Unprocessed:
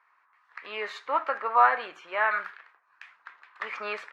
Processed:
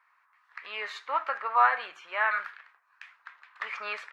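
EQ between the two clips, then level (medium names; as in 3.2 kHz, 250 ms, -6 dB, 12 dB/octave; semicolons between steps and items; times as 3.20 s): peaking EQ 260 Hz -12.5 dB 2.5 oct; +1.0 dB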